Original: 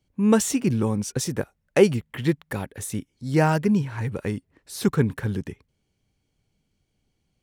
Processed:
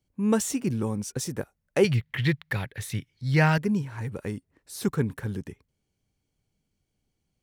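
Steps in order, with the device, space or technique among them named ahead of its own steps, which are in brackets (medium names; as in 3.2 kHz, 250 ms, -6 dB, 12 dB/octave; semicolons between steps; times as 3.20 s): 1.84–3.58 s: ten-band graphic EQ 125 Hz +11 dB, 250 Hz -6 dB, 2 kHz +10 dB, 4 kHz +10 dB, 8 kHz -7 dB; exciter from parts (in parallel at -6 dB: high-pass 4 kHz 6 dB/octave + saturation -30.5 dBFS, distortion -8 dB + high-pass 3.2 kHz 12 dB/octave); on the sum: trim -5 dB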